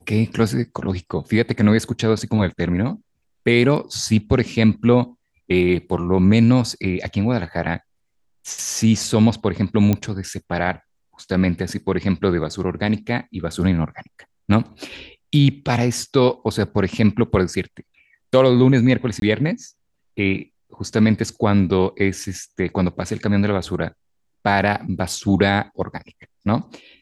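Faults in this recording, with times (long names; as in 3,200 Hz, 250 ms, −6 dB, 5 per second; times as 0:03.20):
0:09.93: click −7 dBFS
0:19.20–0:19.22: drop-out 22 ms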